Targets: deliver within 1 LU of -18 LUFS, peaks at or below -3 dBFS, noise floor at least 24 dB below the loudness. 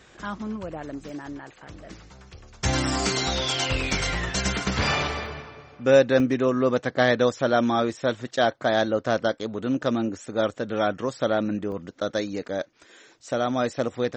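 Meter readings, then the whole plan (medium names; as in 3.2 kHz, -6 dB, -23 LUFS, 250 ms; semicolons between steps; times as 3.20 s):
dropouts 5; longest dropout 1.1 ms; loudness -25.0 LUFS; peak level -6.5 dBFS; loudness target -18.0 LUFS
-> interpolate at 1.09/3.91/5.26/6.20/11.72 s, 1.1 ms; trim +7 dB; peak limiter -3 dBFS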